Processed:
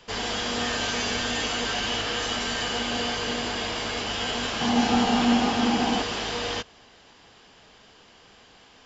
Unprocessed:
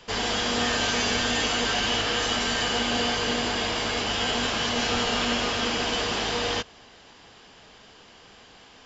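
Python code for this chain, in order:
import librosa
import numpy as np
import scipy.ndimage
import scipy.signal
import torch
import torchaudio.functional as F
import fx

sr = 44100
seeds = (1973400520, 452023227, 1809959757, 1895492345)

y = fx.small_body(x, sr, hz=(230.0, 780.0), ring_ms=25, db=13, at=(4.61, 6.02))
y = F.gain(torch.from_numpy(y), -2.5).numpy()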